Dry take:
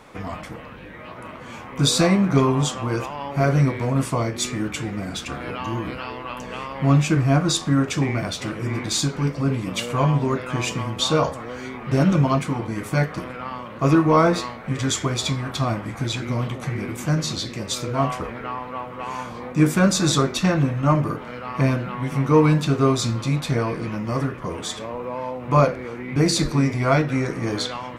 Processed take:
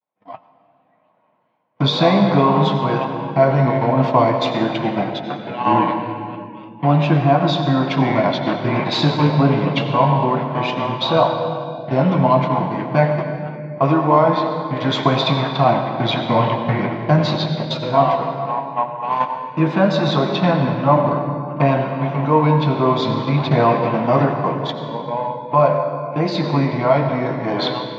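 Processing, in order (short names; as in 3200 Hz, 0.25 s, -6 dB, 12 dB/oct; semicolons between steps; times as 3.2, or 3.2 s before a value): vibrato 0.47 Hz 71 cents; in parallel at -2 dB: limiter -15 dBFS, peak gain reduction 10.5 dB; on the sum: gate -22 dBFS, range -39 dB; elliptic band-pass 140–3900 Hz, stop band 40 dB; band shelf 800 Hz +8.5 dB 1.1 oct; notch 1200 Hz, Q 9.4; AGC gain up to 16.5 dB; on a send at -5.5 dB: reverb RT60 2.7 s, pre-delay 79 ms; on the sum: spectral noise reduction 10 dB; gain -2.5 dB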